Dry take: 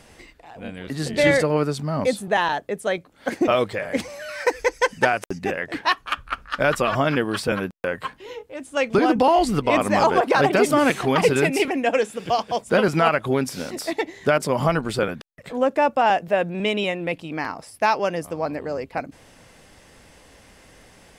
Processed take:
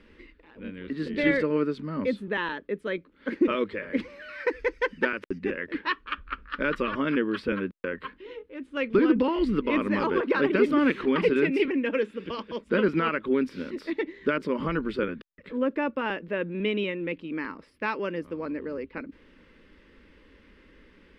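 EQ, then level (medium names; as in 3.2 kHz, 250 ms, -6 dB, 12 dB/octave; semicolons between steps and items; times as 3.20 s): distance through air 390 m; static phaser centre 300 Hz, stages 4; 0.0 dB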